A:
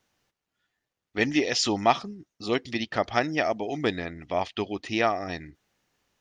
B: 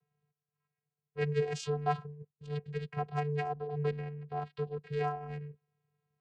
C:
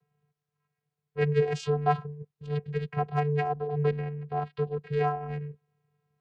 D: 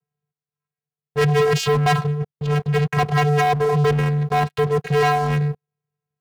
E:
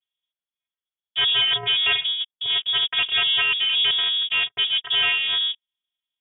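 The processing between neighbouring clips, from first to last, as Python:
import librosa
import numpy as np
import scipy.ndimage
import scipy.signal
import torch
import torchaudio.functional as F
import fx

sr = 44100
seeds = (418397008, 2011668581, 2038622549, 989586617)

y1 = fx.wiener(x, sr, points=9)
y1 = fx.spec_box(y1, sr, start_s=2.29, length_s=0.28, low_hz=270.0, high_hz=2300.0, gain_db=-9)
y1 = fx.vocoder(y1, sr, bands=8, carrier='square', carrier_hz=147.0)
y1 = y1 * 10.0 ** (-6.5 / 20.0)
y2 = fx.high_shelf(y1, sr, hz=4800.0, db=-11.0)
y2 = y2 * 10.0 ** (6.5 / 20.0)
y3 = fx.leveller(y2, sr, passes=5)
y4 = fx.freq_invert(y3, sr, carrier_hz=3500)
y4 = y4 * 10.0 ** (-3.5 / 20.0)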